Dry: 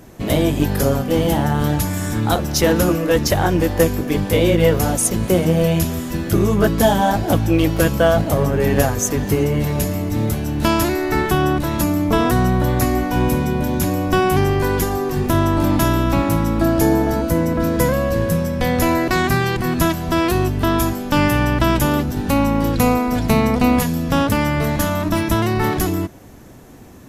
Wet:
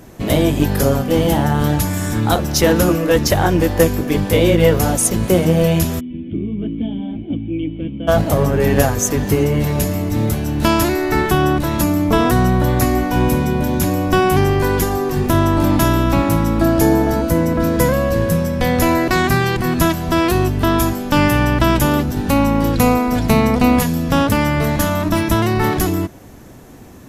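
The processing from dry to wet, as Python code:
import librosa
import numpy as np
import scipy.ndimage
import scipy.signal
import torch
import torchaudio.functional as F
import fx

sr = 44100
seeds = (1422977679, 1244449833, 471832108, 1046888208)

y = fx.formant_cascade(x, sr, vowel='i', at=(5.99, 8.07), fade=0.02)
y = F.gain(torch.from_numpy(y), 2.0).numpy()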